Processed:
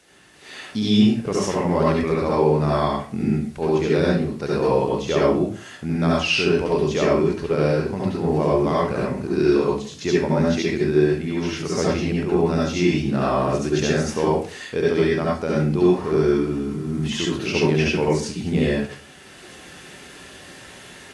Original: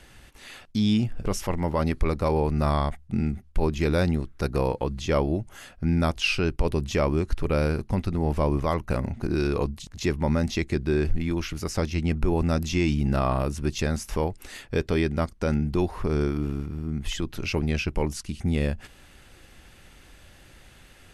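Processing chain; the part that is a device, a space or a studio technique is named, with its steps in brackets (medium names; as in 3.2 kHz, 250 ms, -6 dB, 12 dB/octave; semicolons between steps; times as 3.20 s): filmed off a television (band-pass 150–7800 Hz; peaking EQ 440 Hz +5 dB 0.3 oct; reverberation RT60 0.45 s, pre-delay 64 ms, DRR -5.5 dB; white noise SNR 33 dB; level rider; trim -5.5 dB; AAC 64 kbps 24 kHz)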